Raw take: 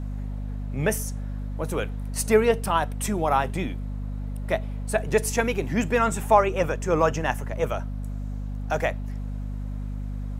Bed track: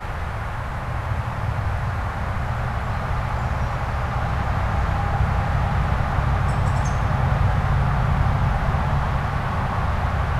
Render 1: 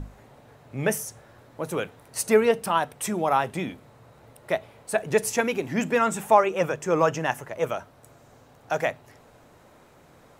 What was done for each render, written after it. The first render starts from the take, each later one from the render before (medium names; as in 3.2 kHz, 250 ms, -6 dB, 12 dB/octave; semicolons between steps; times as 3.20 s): hum notches 50/100/150/200/250 Hz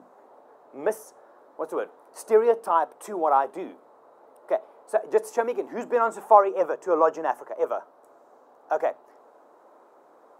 high-pass 320 Hz 24 dB/octave; resonant high shelf 1.6 kHz -13 dB, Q 1.5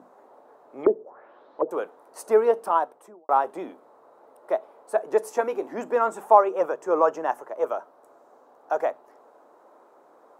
0.83–1.71 s: touch-sensitive low-pass 370–4700 Hz down, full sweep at -26 dBFS; 2.73–3.29 s: studio fade out; 5.34–5.75 s: doubling 19 ms -12 dB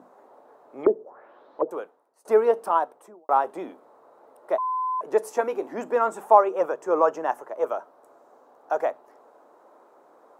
1.63–2.25 s: fade out quadratic, to -23.5 dB; 4.58–5.01 s: bleep 1.02 kHz -23.5 dBFS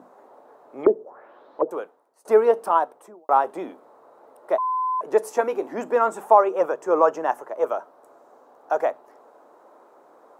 trim +2.5 dB; peak limiter -3 dBFS, peak gain reduction 2.5 dB